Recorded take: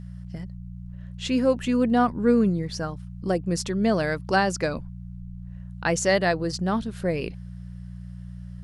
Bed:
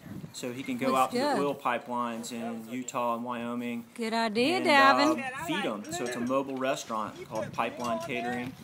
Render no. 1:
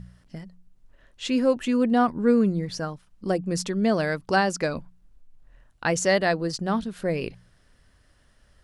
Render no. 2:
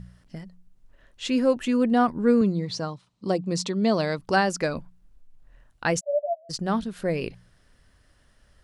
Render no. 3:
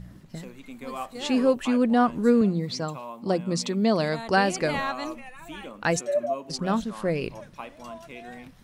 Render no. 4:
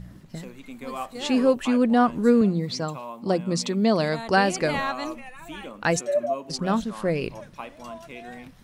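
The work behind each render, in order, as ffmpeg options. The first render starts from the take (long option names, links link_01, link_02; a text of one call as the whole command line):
ffmpeg -i in.wav -af "bandreject=frequency=60:width_type=h:width=4,bandreject=frequency=120:width_type=h:width=4,bandreject=frequency=180:width_type=h:width=4" out.wav
ffmpeg -i in.wav -filter_complex "[0:a]asettb=1/sr,asplit=3[link_01][link_02][link_03];[link_01]atrim=end=2.414[link_04];[link_02]atrim=start=2.41:end=4.19,asetpts=PTS-STARTPTS,afade=type=in:duration=0.004:curve=qsin,afade=type=out:start_time=1.776:duration=0.004:curve=qsin,highpass=120,equalizer=frequency=120:width_type=q:width=4:gain=7,equalizer=frequency=1000:width_type=q:width=4:gain=4,equalizer=frequency=1600:width_type=q:width=4:gain=-7,equalizer=frequency=4000:width_type=q:width=4:gain=8,lowpass=frequency=8600:width=0.5412,lowpass=frequency=8600:width=1.3066[link_05];[link_03]atrim=start=4.186[link_06];[link_04][link_05]acrossfade=duration=0.004:curve1=hsin:curve2=qsin[link_07];[link_07][link_06]acrossfade=duration=0.004:curve1=qsin:curve2=hsin,asplit=3[link_08][link_09][link_10];[link_08]afade=type=out:start_time=5.99:duration=0.02[link_11];[link_09]asuperpass=centerf=630:order=12:qfactor=5.2,afade=type=in:start_time=5.99:duration=0.02,afade=type=out:start_time=6.49:duration=0.02[link_12];[link_10]afade=type=in:start_time=6.49:duration=0.02[link_13];[link_11][link_12][link_13]amix=inputs=3:normalize=0" out.wav
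ffmpeg -i in.wav -i bed.wav -filter_complex "[1:a]volume=-9dB[link_01];[0:a][link_01]amix=inputs=2:normalize=0" out.wav
ffmpeg -i in.wav -af "volume=1.5dB" out.wav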